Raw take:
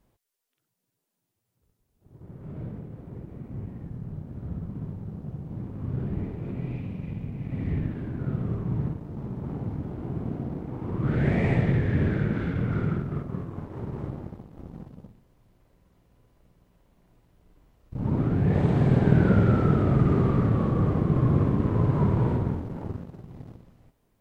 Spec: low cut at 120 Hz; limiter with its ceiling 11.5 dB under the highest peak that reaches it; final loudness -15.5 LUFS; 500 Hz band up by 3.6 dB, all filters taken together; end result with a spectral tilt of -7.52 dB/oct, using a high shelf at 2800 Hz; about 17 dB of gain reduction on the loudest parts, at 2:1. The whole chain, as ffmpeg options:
-af "highpass=120,equalizer=f=500:t=o:g=4.5,highshelf=f=2.8k:g=6,acompressor=threshold=-48dB:ratio=2,volume=29.5dB,alimiter=limit=-5.5dB:level=0:latency=1"

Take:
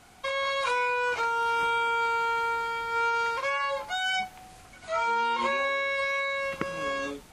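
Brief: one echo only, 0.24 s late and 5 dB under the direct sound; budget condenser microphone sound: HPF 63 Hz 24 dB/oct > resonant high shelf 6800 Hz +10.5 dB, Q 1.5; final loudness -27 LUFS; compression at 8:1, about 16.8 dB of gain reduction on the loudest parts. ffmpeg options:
-af "acompressor=threshold=-42dB:ratio=8,highpass=f=63:w=0.5412,highpass=f=63:w=1.3066,highshelf=f=6.8k:t=q:w=1.5:g=10.5,aecho=1:1:240:0.562,volume=15dB"

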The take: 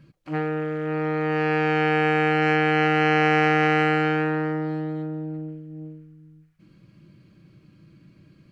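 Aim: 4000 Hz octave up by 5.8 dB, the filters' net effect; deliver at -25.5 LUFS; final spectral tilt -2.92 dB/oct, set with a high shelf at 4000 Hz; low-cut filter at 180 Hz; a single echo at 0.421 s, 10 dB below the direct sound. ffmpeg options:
-af "highpass=180,highshelf=f=4k:g=3.5,equalizer=f=4k:t=o:g=7.5,aecho=1:1:421:0.316,volume=-4.5dB"

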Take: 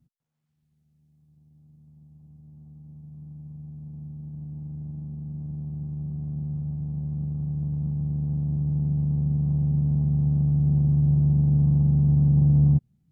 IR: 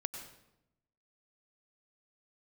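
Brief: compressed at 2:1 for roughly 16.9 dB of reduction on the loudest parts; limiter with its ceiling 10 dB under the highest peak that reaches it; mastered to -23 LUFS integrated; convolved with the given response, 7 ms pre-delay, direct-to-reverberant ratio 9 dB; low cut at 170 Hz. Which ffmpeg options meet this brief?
-filter_complex "[0:a]highpass=170,acompressor=threshold=-53dB:ratio=2,alimiter=level_in=19dB:limit=-24dB:level=0:latency=1,volume=-19dB,asplit=2[a][b];[1:a]atrim=start_sample=2205,adelay=7[c];[b][c]afir=irnorm=-1:irlink=0,volume=-9dB[d];[a][d]amix=inputs=2:normalize=0,volume=24dB"

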